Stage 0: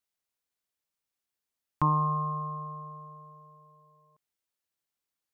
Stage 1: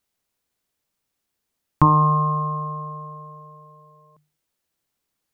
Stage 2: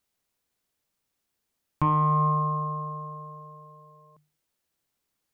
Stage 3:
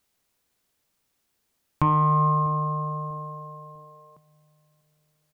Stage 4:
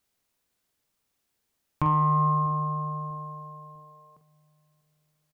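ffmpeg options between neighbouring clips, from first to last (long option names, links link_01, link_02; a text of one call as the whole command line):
ffmpeg -i in.wav -af "lowshelf=frequency=490:gain=7.5,bandreject=frequency=50:width_type=h:width=6,bandreject=frequency=100:width_type=h:width=6,bandreject=frequency=150:width_type=h:width=6,volume=8.5dB" out.wav
ffmpeg -i in.wav -af "asoftclip=type=tanh:threshold=-4.5dB,alimiter=limit=-13.5dB:level=0:latency=1,volume=-1.5dB" out.wav
ffmpeg -i in.wav -filter_complex "[0:a]asplit=2[link_01][link_02];[link_02]acompressor=threshold=-31dB:ratio=6,volume=0dB[link_03];[link_01][link_03]amix=inputs=2:normalize=0,asplit=2[link_04][link_05];[link_05]adelay=646,lowpass=frequency=1000:poles=1,volume=-20dB,asplit=2[link_06][link_07];[link_07]adelay=646,lowpass=frequency=1000:poles=1,volume=0.37,asplit=2[link_08][link_09];[link_09]adelay=646,lowpass=frequency=1000:poles=1,volume=0.37[link_10];[link_04][link_06][link_08][link_10]amix=inputs=4:normalize=0" out.wav
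ffmpeg -i in.wav -filter_complex "[0:a]asplit=2[link_01][link_02];[link_02]adelay=45,volume=-9dB[link_03];[link_01][link_03]amix=inputs=2:normalize=0,volume=-4dB" out.wav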